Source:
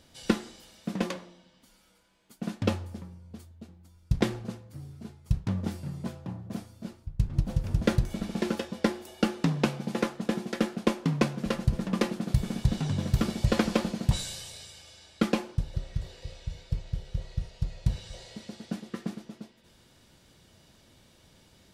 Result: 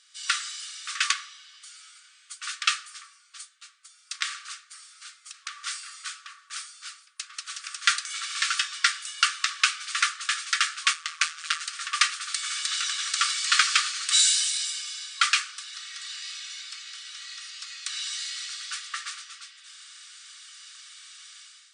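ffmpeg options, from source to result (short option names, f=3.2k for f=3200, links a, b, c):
-filter_complex "[0:a]asettb=1/sr,asplit=3[a][b][c];[a]atrim=end=4.164[d];[b]atrim=start=4.16:end=5.61,asetpts=PTS-STARTPTS,afade=t=in:d=0.004:c=qsin,afade=t=out:st=1.446:d=0.004:c=qsin,acompressor=threshold=-31dB:ratio=2.5:attack=3.2:release=140:knee=1:detection=peak[e];[c]atrim=start=5.606[f];[d][e]acrossfade=d=0.004:c1=hsin:c2=qsin[g];[g][f]acrossfade=d=0.004:c1=qsin:c2=hsin,asplit=3[h][i][j];[h]afade=t=out:st=10.92:d=0.02[k];[i]tremolo=f=160:d=0.889,afade=t=in:st=10.92:d=0.02,afade=t=out:st=11.6:d=0.02[l];[j]afade=t=in:st=11.6:d=0.02[m];[k][l][m]amix=inputs=3:normalize=0,asettb=1/sr,asplit=3[n][o][p];[n]atrim=end=14.144[q];[o]atrim=start=14.14:end=14.66,asetpts=PTS-STARTPTS,afade=t=in:d=0.004:c=qsin,afade=t=out:st=0.516:d=0.004:c=qsin,asuperstop=centerf=1100:order=4:qfactor=5.7[r];[p]atrim=start=14.656[s];[q][r]acrossfade=d=0.004:c1=hsin:c2=qsin[t];[t][s]acrossfade=d=0.004:c1=qsin:c2=hsin,afftfilt=real='re*between(b*sr/4096,1100,9600)':imag='im*between(b*sr/4096,1100,9600)':win_size=4096:overlap=0.75,highshelf=f=4.7k:g=8.5,dynaudnorm=f=110:g=7:m=13dB"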